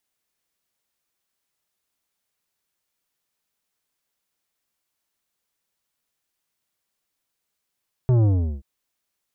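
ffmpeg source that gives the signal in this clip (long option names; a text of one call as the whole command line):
ffmpeg -f lavfi -i "aevalsrc='0.168*clip((0.53-t)/0.38,0,1)*tanh(3.55*sin(2*PI*130*0.53/log(65/130)*(exp(log(65/130)*t/0.53)-1)))/tanh(3.55)':duration=0.53:sample_rate=44100" out.wav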